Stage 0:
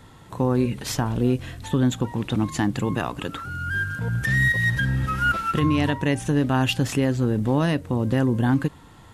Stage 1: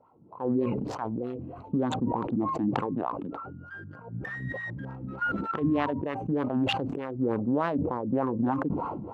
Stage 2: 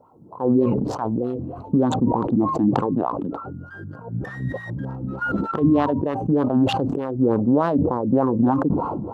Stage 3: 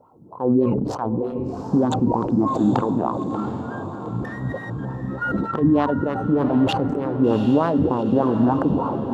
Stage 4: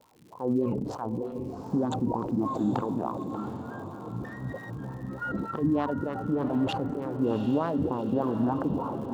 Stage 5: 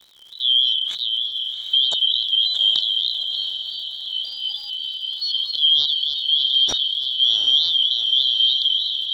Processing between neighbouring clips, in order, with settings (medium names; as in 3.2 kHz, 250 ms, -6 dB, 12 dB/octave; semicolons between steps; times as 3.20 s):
local Wiener filter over 25 samples; wah-wah 3.3 Hz 220–1200 Hz, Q 2.8; decay stretcher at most 31 dB/s
peaking EQ 2.2 kHz -12 dB 1.2 oct; trim +9 dB
echo that smears into a reverb 748 ms, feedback 49%, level -9 dB
crackle 160 per s -38 dBFS; trim -8.5 dB
four frequency bands reordered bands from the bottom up 3412; trim +8.5 dB